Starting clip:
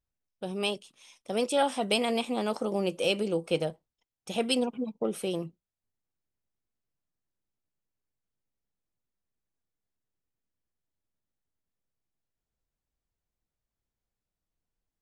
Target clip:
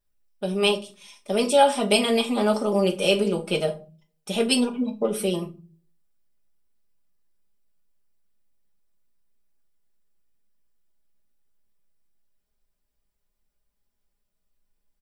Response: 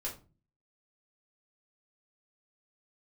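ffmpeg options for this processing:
-filter_complex "[0:a]bandreject=f=6.6k:w=9.5,aecho=1:1:4.9:0.75,asplit=2[a][b];[1:a]atrim=start_sample=2205,highshelf=f=4.9k:g=7.5[c];[b][c]afir=irnorm=-1:irlink=0,volume=-1.5dB[d];[a][d]amix=inputs=2:normalize=0"

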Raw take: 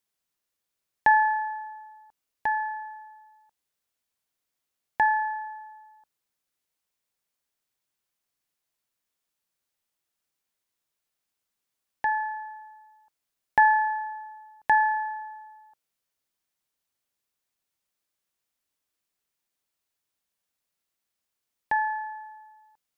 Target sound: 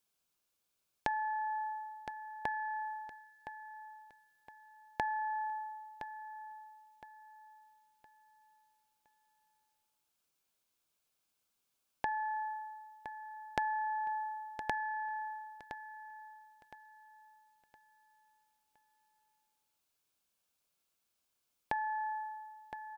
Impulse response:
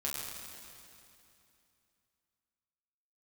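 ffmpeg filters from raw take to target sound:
-af "bandreject=f=1.9k:w=5.6,acompressor=threshold=-34dB:ratio=10,aecho=1:1:1015|2030|3045|4060:0.282|0.093|0.0307|0.0101,volume=1dB"

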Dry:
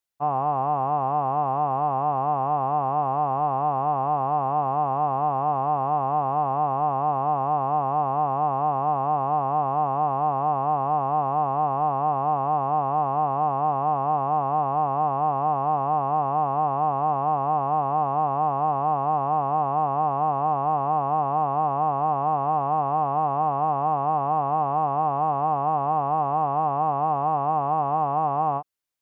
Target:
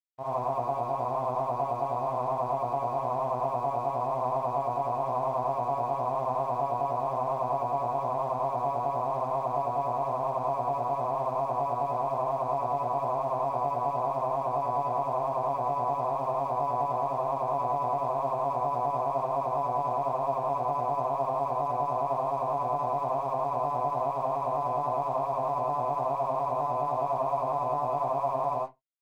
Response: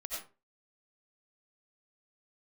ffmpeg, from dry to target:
-filter_complex "[0:a]tremolo=f=9.8:d=0.89,aeval=exprs='sgn(val(0))*max(abs(val(0))-0.00211,0)':c=same,acontrast=32,asetrate=40440,aresample=44100,atempo=1.09051[a];[1:a]atrim=start_sample=2205,asetrate=79380,aresample=44100[b];[a][b]afir=irnorm=-1:irlink=0"

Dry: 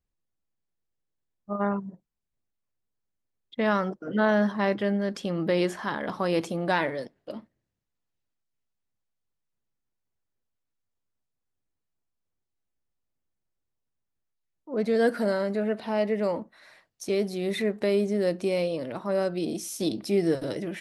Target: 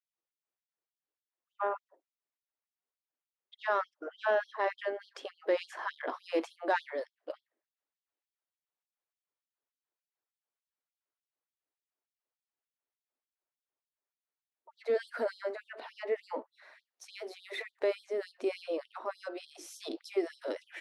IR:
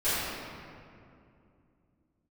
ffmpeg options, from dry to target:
-filter_complex "[0:a]asplit=2[a][b];[b]highpass=f=720:p=1,volume=10dB,asoftclip=type=tanh:threshold=-10.5dB[c];[a][c]amix=inputs=2:normalize=0,lowpass=f=1.1k:p=1,volume=-6dB,afftfilt=real='re*gte(b*sr/1024,230*pow(3200/230,0.5+0.5*sin(2*PI*3.4*pts/sr)))':imag='im*gte(b*sr/1024,230*pow(3200/230,0.5+0.5*sin(2*PI*3.4*pts/sr)))':win_size=1024:overlap=0.75,volume=-3dB"

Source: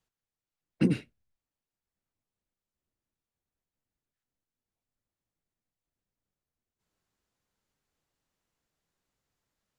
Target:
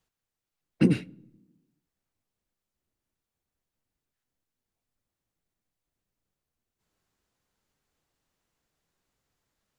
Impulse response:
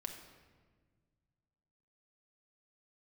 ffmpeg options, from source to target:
-filter_complex "[0:a]asplit=2[a][b];[1:a]atrim=start_sample=2205,asetrate=83790,aresample=44100,highshelf=f=4k:g=-9.5[c];[b][c]afir=irnorm=-1:irlink=0,volume=-10.5dB[d];[a][d]amix=inputs=2:normalize=0,volume=3dB"

